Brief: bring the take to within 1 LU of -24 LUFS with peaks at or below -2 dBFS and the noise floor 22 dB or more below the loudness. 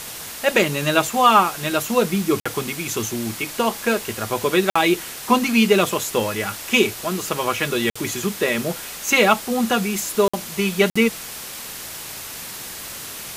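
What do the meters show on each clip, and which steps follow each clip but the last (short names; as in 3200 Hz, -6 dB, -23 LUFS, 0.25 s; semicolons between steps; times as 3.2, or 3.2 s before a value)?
dropouts 5; longest dropout 55 ms; noise floor -34 dBFS; noise floor target -42 dBFS; loudness -20.0 LUFS; peak -1.0 dBFS; loudness target -24.0 LUFS
-> interpolate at 2.4/4.7/7.9/10.28/10.9, 55 ms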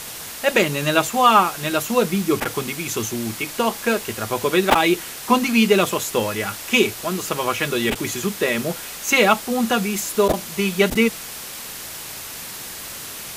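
dropouts 0; noise floor -34 dBFS; noise floor target -42 dBFS
-> denoiser 8 dB, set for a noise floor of -34 dBFS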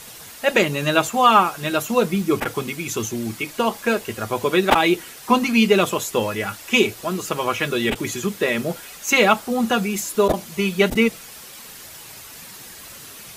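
noise floor -40 dBFS; noise floor target -43 dBFS
-> denoiser 6 dB, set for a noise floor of -40 dBFS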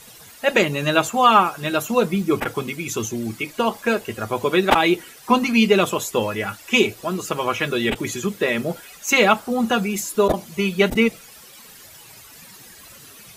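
noise floor -45 dBFS; loudness -20.5 LUFS; peak -1.5 dBFS; loudness target -24.0 LUFS
-> gain -3.5 dB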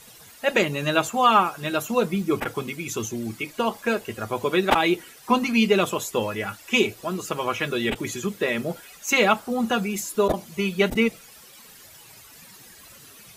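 loudness -24.0 LUFS; peak -5.0 dBFS; noise floor -48 dBFS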